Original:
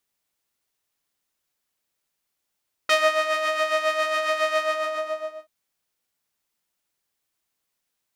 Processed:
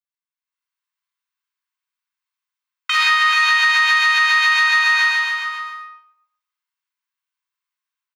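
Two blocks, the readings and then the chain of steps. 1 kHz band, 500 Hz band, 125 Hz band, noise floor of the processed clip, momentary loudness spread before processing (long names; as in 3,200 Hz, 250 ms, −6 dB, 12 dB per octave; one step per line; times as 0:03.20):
+7.0 dB, below −35 dB, can't be measured, below −85 dBFS, 11 LU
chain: dynamic equaliser 3,100 Hz, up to +5 dB, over −38 dBFS, Q 1
noise gate with hold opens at −27 dBFS
Butterworth high-pass 930 Hz 96 dB per octave
parametric band 11,000 Hz −10.5 dB 2.4 octaves
automatic gain control gain up to 10.5 dB
single-tap delay 436 ms −6.5 dB
rectangular room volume 2,100 cubic metres, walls furnished, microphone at 5.2 metres
boost into a limiter +11 dB
every ending faded ahead of time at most 310 dB per second
level −7 dB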